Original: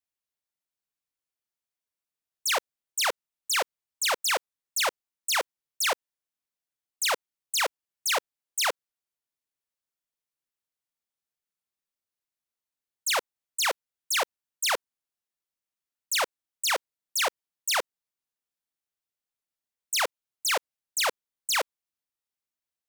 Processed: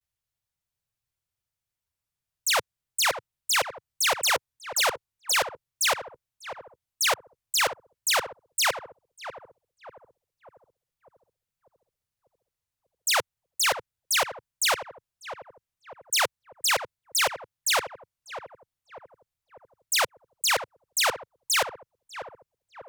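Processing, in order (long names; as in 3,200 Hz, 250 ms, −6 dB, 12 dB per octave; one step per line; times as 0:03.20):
low shelf with overshoot 170 Hz +13 dB, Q 1.5
pitch vibrato 0.37 Hz 44 cents
feedback echo with a low-pass in the loop 594 ms, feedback 57%, low-pass 960 Hz, level −8.5 dB
level +2.5 dB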